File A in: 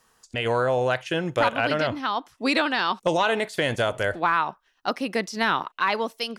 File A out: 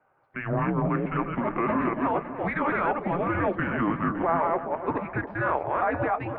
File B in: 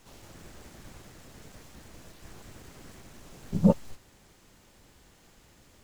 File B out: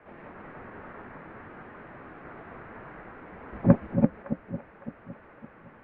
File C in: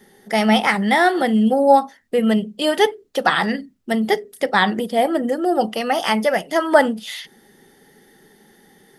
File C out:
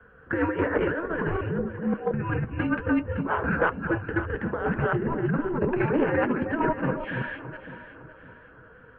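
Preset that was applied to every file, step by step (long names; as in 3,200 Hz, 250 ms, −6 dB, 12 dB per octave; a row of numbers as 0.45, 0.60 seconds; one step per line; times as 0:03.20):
delay that plays each chunk backwards 176 ms, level −2.5 dB
high-pass filter 320 Hz 24 dB per octave
compressor whose output falls as the input rises −21 dBFS, ratio −0.5
asymmetric clip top −17 dBFS
flanger 0.58 Hz, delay 4.9 ms, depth 5.2 ms, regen −55%
delay that swaps between a low-pass and a high-pass 280 ms, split 1,100 Hz, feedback 62%, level −8.5 dB
single-sideband voice off tune −340 Hz 490–2,300 Hz
loudness normalisation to −27 LKFS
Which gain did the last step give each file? +2.5, +14.5, +2.5 decibels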